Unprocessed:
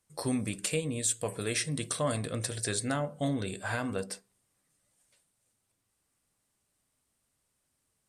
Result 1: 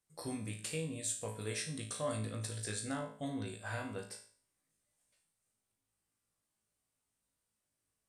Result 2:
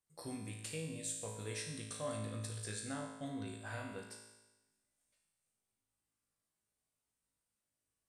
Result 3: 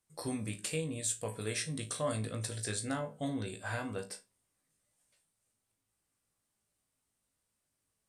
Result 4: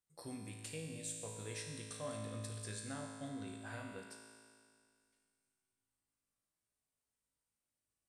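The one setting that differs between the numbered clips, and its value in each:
resonator, decay: 0.46, 1.1, 0.21, 2.2 s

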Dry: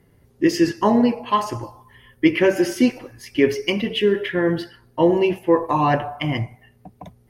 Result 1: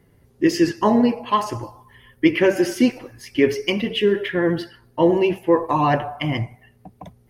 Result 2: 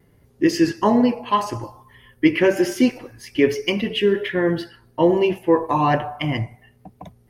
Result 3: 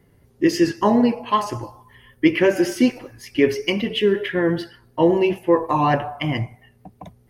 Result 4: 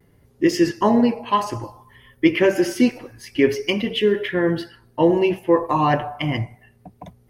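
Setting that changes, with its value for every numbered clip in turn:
vibrato, rate: 12, 1.2, 5.3, 0.56 Hz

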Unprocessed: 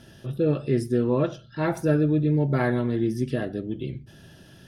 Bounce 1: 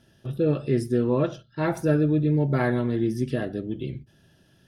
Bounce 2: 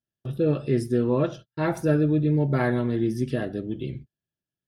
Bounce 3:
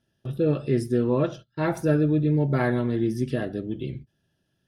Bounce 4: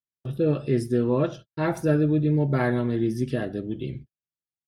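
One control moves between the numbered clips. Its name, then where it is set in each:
gate, range: -10, -44, -24, -59 dB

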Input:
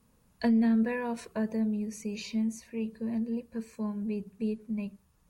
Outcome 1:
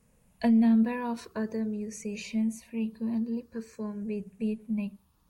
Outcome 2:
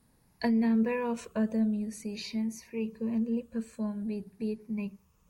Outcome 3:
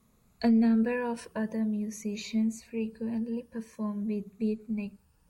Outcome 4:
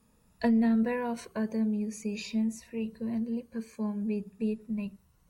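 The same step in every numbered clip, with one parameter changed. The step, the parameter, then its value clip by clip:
moving spectral ripple, ripples per octave: 0.52, 0.79, 1.2, 2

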